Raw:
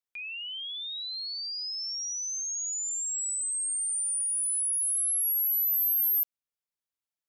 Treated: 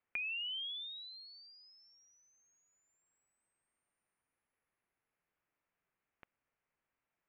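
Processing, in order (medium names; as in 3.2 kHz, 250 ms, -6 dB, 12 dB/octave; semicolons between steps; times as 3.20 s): steep low-pass 2.5 kHz 36 dB/octave; compression, threshold -50 dBFS, peak gain reduction 9.5 dB; trim +11.5 dB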